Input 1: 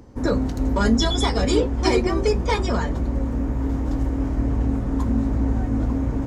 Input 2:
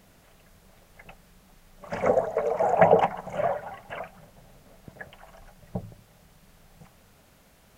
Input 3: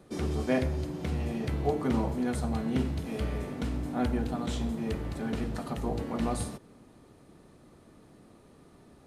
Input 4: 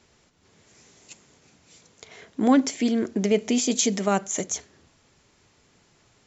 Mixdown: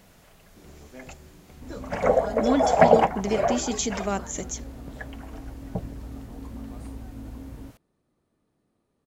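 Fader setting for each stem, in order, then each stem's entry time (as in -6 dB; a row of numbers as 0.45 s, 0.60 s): -17.0 dB, +2.0 dB, -18.0 dB, -5.0 dB; 1.45 s, 0.00 s, 0.45 s, 0.00 s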